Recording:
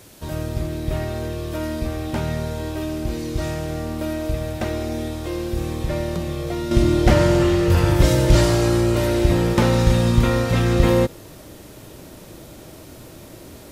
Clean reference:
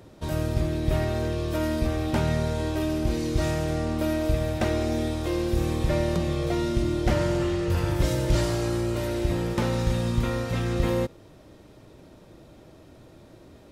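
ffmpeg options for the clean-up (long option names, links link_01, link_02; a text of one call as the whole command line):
ffmpeg -i in.wav -af "agate=range=-21dB:threshold=-33dB,asetnsamples=nb_out_samples=441:pad=0,asendcmd='6.71 volume volume -8.5dB',volume=0dB" out.wav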